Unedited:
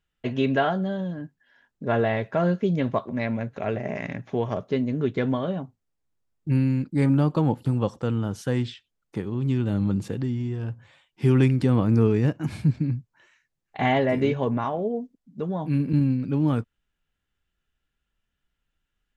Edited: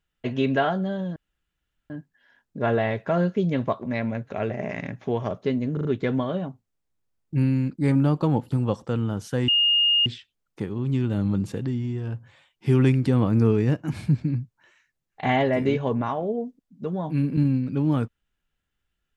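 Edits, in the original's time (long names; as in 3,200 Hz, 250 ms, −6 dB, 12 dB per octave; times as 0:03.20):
0:01.16: splice in room tone 0.74 s
0:04.99: stutter 0.04 s, 4 plays
0:08.62: insert tone 2,840 Hz −16.5 dBFS 0.58 s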